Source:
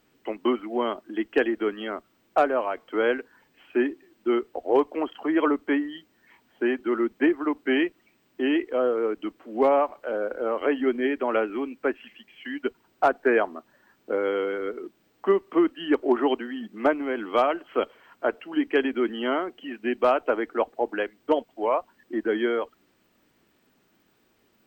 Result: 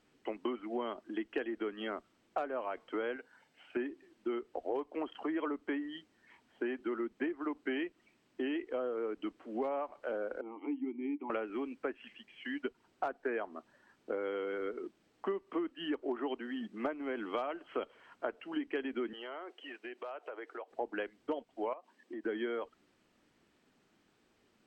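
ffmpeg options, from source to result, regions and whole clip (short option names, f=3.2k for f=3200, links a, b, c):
-filter_complex "[0:a]asettb=1/sr,asplit=3[a][b][c];[a]atrim=end=3.164[d];[b]atrim=start=3.16:end=3.77,asetpts=PTS-STARTPTS,afade=t=in:d=0.004:c=qsin,afade=t=out:st=0.606:d=0.004:c=qsin,highpass=f=210:p=1,aecho=1:1:1.4:0.41,atrim=end_sample=26901[e];[c]atrim=start=3.766[f];[d][e]acrossfade=d=0.004:c1=hsin:c2=qsin[g];[g][f]acrossfade=d=0.004:c1=qsin:c2=hsin,asettb=1/sr,asplit=3[h][i][j];[h]atrim=end=10.414[k];[i]atrim=start=10.41:end=11.3,asetpts=PTS-STARTPTS,afade=t=in:d=0.004:c=qsin,afade=t=out:st=0.886:d=0.004:c=qsin,asplit=3[l][m][n];[l]bandpass=f=300:t=q:w=8,volume=0dB[o];[m]bandpass=f=870:t=q:w=8,volume=-6dB[p];[n]bandpass=f=2.24k:t=q:w=8,volume=-9dB[q];[o][p][q]amix=inputs=3:normalize=0,lowshelf=f=240:g=7[r];[j]atrim=start=11.296[s];[k][r]acrossfade=d=0.004:c1=hsin:c2=qsin[t];[t][s]acrossfade=d=0.004:c1=qsin:c2=hsin,asettb=1/sr,asplit=3[u][v][w];[u]atrim=end=19.134[x];[v]atrim=start=19.13:end=20.71,asetpts=PTS-STARTPTS,afade=t=in:d=0.004:c=qsin,afade=t=out:st=1.576:d=0.004:c=qsin,highpass=f=390:w=0.5412,highpass=f=390:w=1.3066,acompressor=threshold=-36dB:ratio=6:attack=3.2:release=140:knee=1:detection=peak[y];[w]atrim=start=20.706[z];[x][y]acrossfade=d=0.004:c1=hsin:c2=qsin[aa];[aa][z]acrossfade=d=0.004:c1=qsin:c2=hsin,asettb=1/sr,asplit=3[ab][ac][ad];[ab]atrim=end=21.734[ae];[ac]atrim=start=21.73:end=22.24,asetpts=PTS-STARTPTS,afade=t=in:d=0.004:c=qsin,afade=t=out:st=0.506:d=0.004:c=qsin,highpass=f=210:w=0.5412,highpass=f=210:w=1.3066,bandreject=f=1.4k:w=7.1,acompressor=threshold=-36dB:ratio=4:attack=3.2:release=140:knee=1:detection=peak[af];[ad]atrim=start=22.236[ag];[ae][af]acrossfade=d=0.004:c1=hsin:c2=qsin[ah];[ah][ag]acrossfade=d=0.004:c1=qsin:c2=hsin,acompressor=threshold=-28dB:ratio=6,lowpass=9.4k,volume=-5dB"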